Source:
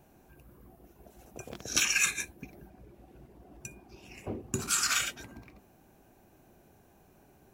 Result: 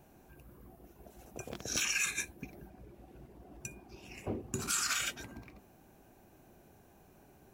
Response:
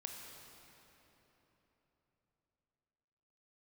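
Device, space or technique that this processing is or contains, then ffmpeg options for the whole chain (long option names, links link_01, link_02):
clipper into limiter: -af "asoftclip=type=hard:threshold=-14dB,alimiter=limit=-21.5dB:level=0:latency=1:release=130"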